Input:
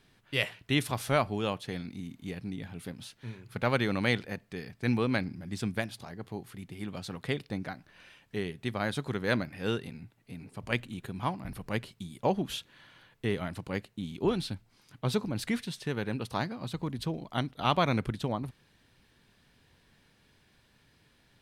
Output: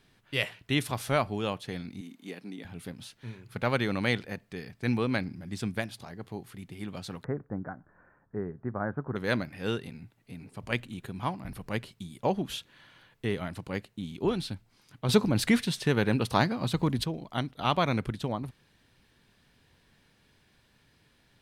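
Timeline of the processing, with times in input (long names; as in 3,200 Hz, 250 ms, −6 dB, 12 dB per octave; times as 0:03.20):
0:02.01–0:02.65: high-pass filter 220 Hz 24 dB per octave
0:07.24–0:09.16: Butterworth low-pass 1,600 Hz 48 dB per octave
0:15.09–0:17.04: clip gain +7.5 dB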